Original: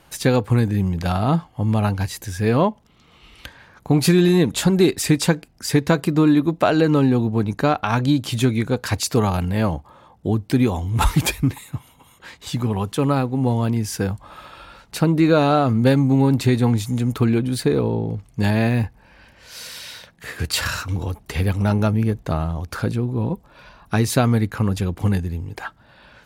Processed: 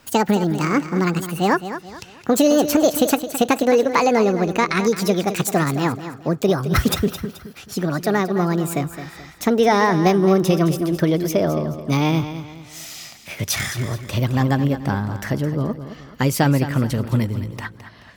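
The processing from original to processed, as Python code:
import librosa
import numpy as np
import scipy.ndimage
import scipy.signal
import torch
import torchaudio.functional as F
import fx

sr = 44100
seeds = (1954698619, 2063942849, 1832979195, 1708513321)

y = fx.speed_glide(x, sr, from_pct=174, to_pct=115)
y = fx.echo_feedback(y, sr, ms=215, feedback_pct=36, wet_db=-11.5)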